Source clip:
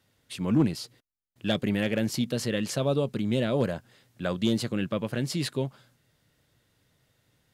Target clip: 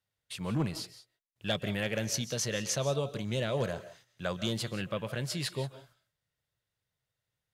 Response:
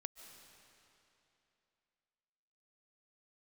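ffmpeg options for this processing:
-filter_complex "[0:a]asettb=1/sr,asplit=3[s0][s1][s2];[s0]atrim=end=1.964[s3];[s1]atrim=start=1.96:end=4.46,asetpts=PTS-STARTPTS,afade=t=in:d=0.004:c=qsin,afade=t=out:st=2.496:d=0.004:c=qsin,equalizer=f=6100:t=o:w=0.24:g=12[s4];[s2]atrim=start=4.456[s5];[s3][s4]acrossfade=d=0.004:c1=hsin:c2=qsin[s6];[s6][s5]acrossfade=d=0.004:c1=qsin:c2=hsin,agate=range=0.178:threshold=0.00126:ratio=16:detection=peak,equalizer=f=270:t=o:w=1:g=-11.5[s7];[1:a]atrim=start_sample=2205,afade=t=out:st=0.24:d=0.01,atrim=end_sample=11025[s8];[s7][s8]afir=irnorm=-1:irlink=0,volume=1.41"

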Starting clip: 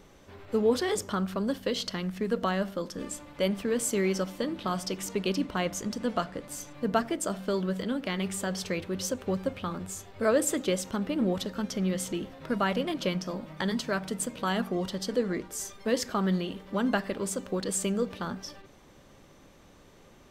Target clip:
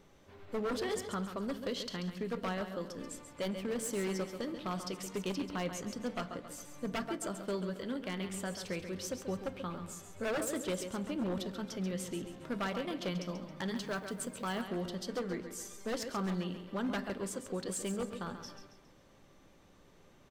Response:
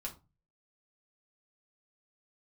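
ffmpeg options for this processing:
-filter_complex "[0:a]aecho=1:1:136|272|408|544:0.335|0.137|0.0563|0.0231,aeval=exprs='0.0841*(abs(mod(val(0)/0.0841+3,4)-2)-1)':c=same,asettb=1/sr,asplit=3[s0][s1][s2];[s0]atrim=end=13.764[s3];[s1]atrim=start=13.76:end=14.62,asetpts=PTS-STARTPTS,afade=t=in:d=0.004:c=qsin,afade=t=out:st=0.856:d=0.004:c=qsin,acrusher=bits=7:mode=log:mix=0:aa=0.000001[s4];[s2]atrim=start=14.616[s5];[s3][s4]acrossfade=d=0.004:c1=hsin:c2=qsin[s6];[s6][s5]acrossfade=d=0.004:c1=qsin:c2=hsin,asplit=2[s7][s8];[1:a]atrim=start_sample=2205,asetrate=35280,aresample=44100,lowpass=6400[s9];[s8][s9]afir=irnorm=-1:irlink=0,volume=0.251[s10];[s7][s10]amix=inputs=2:normalize=0,volume=0.376"

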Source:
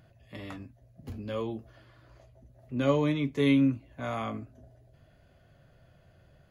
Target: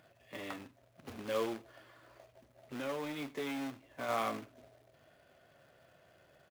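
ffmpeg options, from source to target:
-filter_complex "[0:a]asoftclip=type=tanh:threshold=0.0794,asplit=3[s0][s1][s2];[s0]afade=t=out:st=1.53:d=0.02[s3];[s1]acompressor=threshold=0.0178:ratio=8,afade=t=in:st=1.53:d=0.02,afade=t=out:st=4.08:d=0.02[s4];[s2]afade=t=in:st=4.08:d=0.02[s5];[s3][s4][s5]amix=inputs=3:normalize=0,highpass=f=180:p=1,acrusher=bits=2:mode=log:mix=0:aa=0.000001,bass=f=250:g=-10,treble=f=4000:g=-6,aecho=1:1:91:0.075,volume=1.19"

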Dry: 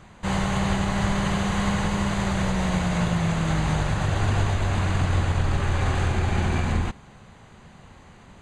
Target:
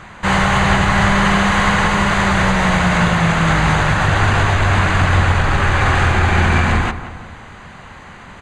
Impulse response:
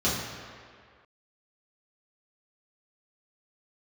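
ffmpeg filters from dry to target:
-filter_complex "[0:a]equalizer=f=1600:w=0.66:g=9.5,asplit=2[s0][s1];[s1]asoftclip=type=tanh:threshold=0.15,volume=0.668[s2];[s0][s2]amix=inputs=2:normalize=0,asplit=2[s3][s4];[s4]adelay=177,lowpass=f=2000:p=1,volume=0.251,asplit=2[s5][s6];[s6]adelay=177,lowpass=f=2000:p=1,volume=0.51,asplit=2[s7][s8];[s8]adelay=177,lowpass=f=2000:p=1,volume=0.51,asplit=2[s9][s10];[s10]adelay=177,lowpass=f=2000:p=1,volume=0.51,asplit=2[s11][s12];[s12]adelay=177,lowpass=f=2000:p=1,volume=0.51[s13];[s3][s5][s7][s9][s11][s13]amix=inputs=6:normalize=0,volume=1.41"

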